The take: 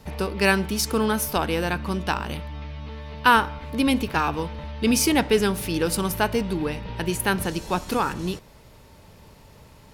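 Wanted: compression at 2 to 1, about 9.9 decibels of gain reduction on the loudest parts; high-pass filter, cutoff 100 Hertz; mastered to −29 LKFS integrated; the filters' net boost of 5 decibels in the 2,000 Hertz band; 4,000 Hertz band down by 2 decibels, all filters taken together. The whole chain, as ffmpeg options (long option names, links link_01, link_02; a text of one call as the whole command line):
ffmpeg -i in.wav -af "highpass=100,equalizer=frequency=2000:width_type=o:gain=8.5,equalizer=frequency=4000:width_type=o:gain=-7,acompressor=threshold=-27dB:ratio=2,volume=-0.5dB" out.wav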